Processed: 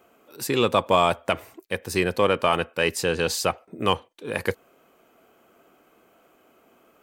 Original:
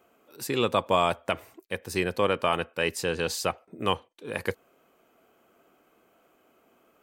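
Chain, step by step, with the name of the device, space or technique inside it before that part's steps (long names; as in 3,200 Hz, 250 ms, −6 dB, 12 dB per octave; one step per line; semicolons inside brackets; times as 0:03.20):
parallel distortion (in parallel at −12.5 dB: hard clipping −23.5 dBFS, distortion −7 dB)
on the sum: level +3 dB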